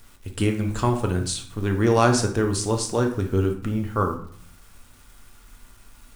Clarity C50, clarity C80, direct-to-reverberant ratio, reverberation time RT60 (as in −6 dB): 8.5 dB, 13.0 dB, 3.0 dB, 0.60 s